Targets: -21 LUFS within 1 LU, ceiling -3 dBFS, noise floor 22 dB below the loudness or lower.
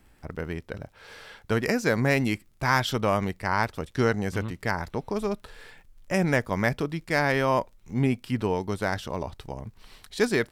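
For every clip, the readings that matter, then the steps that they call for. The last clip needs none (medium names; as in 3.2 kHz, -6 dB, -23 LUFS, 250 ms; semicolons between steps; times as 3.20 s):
tick rate 34 per s; loudness -27.0 LUFS; peak level -7.0 dBFS; loudness target -21.0 LUFS
-> de-click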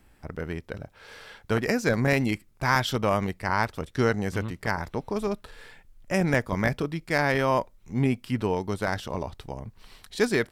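tick rate 1.1 per s; loudness -27.0 LUFS; peak level -7.0 dBFS; loudness target -21.0 LUFS
-> trim +6 dB; peak limiter -3 dBFS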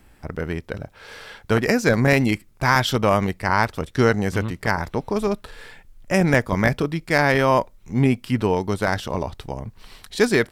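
loudness -21.0 LUFS; peak level -3.0 dBFS; noise floor -53 dBFS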